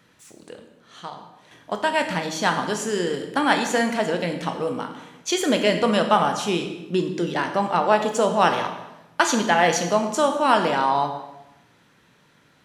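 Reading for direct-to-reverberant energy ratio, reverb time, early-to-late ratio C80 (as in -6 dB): 4.5 dB, 1.0 s, 9.5 dB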